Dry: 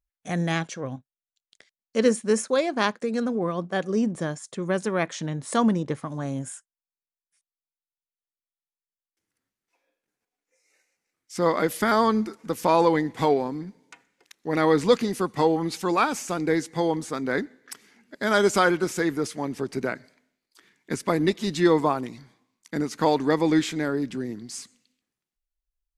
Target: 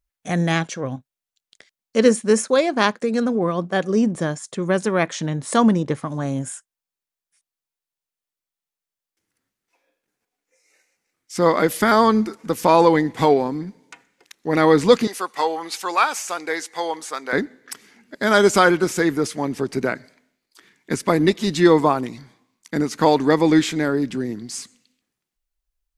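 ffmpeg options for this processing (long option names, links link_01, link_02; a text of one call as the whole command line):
ffmpeg -i in.wav -filter_complex "[0:a]asettb=1/sr,asplit=3[link_01][link_02][link_03];[link_01]atrim=end=15.074[link_04];[link_02]atrim=start=15.07:end=17.33,asetpts=PTS-STARTPTS,afade=type=in:duration=0.004:curve=qsin,afade=type=out:start_time=2.256:duration=0.004:curve=qsin,highpass=720[link_05];[link_03]atrim=start=17.326[link_06];[link_04][link_05]acrossfade=duration=0.004:curve1=hsin:curve2=qsin[link_07];[link_07][link_06]acrossfade=duration=0.004:curve1=qsin:curve2=hsin,volume=5.5dB" out.wav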